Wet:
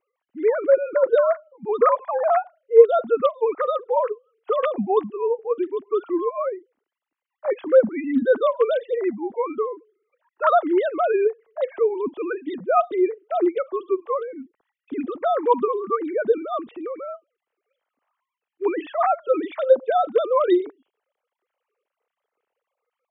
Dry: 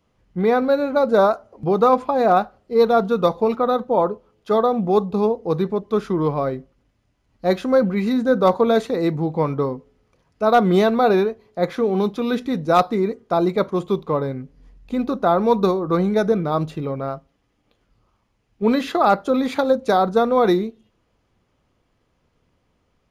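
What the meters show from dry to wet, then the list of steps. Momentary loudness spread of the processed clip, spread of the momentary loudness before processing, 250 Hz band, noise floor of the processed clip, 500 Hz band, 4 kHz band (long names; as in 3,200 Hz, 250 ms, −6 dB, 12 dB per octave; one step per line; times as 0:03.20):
11 LU, 9 LU, −7.0 dB, below −85 dBFS, −1.0 dB, below −10 dB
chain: three sine waves on the formant tracks
gain on a spectral selection 0:10.17–0:10.55, 880–1,900 Hz +11 dB
level −2.5 dB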